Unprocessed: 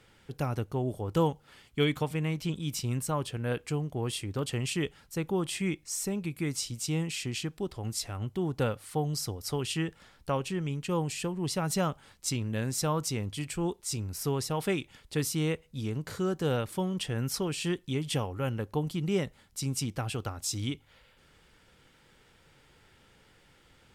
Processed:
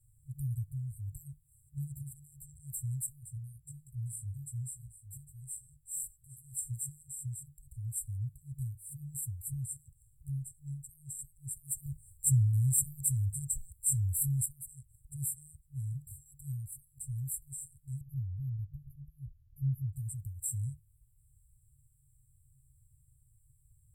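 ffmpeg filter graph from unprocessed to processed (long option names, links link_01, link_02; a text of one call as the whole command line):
ffmpeg -i in.wav -filter_complex "[0:a]asettb=1/sr,asplit=3[link_01][link_02][link_03];[link_01]atrim=end=3.064[link_04];[link_02]atrim=start=3.06:end=6.54,asetpts=PTS-STARTPTS,afade=type=in:duration=0.004:curve=qsin,afade=type=out:start_time=3.476:duration=0.004:curve=qsin,flanger=delay=17:depth=3.2:speed=1.2,aecho=1:1:805:0.2,atrim=end_sample=153468[link_05];[link_03]atrim=start=6.536[link_06];[link_04][link_05]acrossfade=duration=0.004:curve1=hsin:curve2=qsin[link_07];[link_07][link_06]acrossfade=duration=0.004:curve1=qsin:curve2=hsin,asettb=1/sr,asplit=3[link_08][link_09][link_10];[link_08]atrim=end=11.864[link_11];[link_09]atrim=start=11.86:end=14.46,asetpts=PTS-STARTPTS,afade=type=in:duration=0.004:curve=qsin,afade=type=out:start_time=2.596:duration=0.004:curve=qsin,equalizer=frequency=320:width_type=o:width=1.9:gain=6.5,acontrast=87[link_12];[link_10]atrim=start=14.456[link_13];[link_11][link_12]acrossfade=duration=0.004:curve1=hsin:curve2=qsin[link_14];[link_14][link_13]acrossfade=duration=0.004:curve1=qsin:curve2=hsin,asettb=1/sr,asplit=3[link_15][link_16][link_17];[link_15]atrim=end=18.014[link_18];[link_16]atrim=start=18.01:end=19.93,asetpts=PTS-STARTPTS,afade=type=in:duration=0.004:curve=qsin,afade=type=out:start_time=1.916:duration=0.004:curve=qsin,asuperstop=centerf=5200:order=20:qfactor=0.57,aemphasis=mode=reproduction:type=50fm,aecho=1:1:2:0.88,atrim=end_sample=84672[link_19];[link_17]atrim=start=19.926[link_20];[link_18][link_19]acrossfade=duration=0.004:curve1=hsin:curve2=qsin[link_21];[link_21][link_20]acrossfade=duration=0.004:curve1=qsin:curve2=hsin,adynamicequalizer=threshold=0.00562:dfrequency=140:dqfactor=1.1:tfrequency=140:tqfactor=1.1:attack=5:release=100:ratio=0.375:range=4:mode=cutabove:tftype=bell,afftfilt=real='re*(1-between(b*sr/4096,140,7400))':imag='im*(1-between(b*sr/4096,140,7400))':win_size=4096:overlap=0.75,volume=1.5dB" out.wav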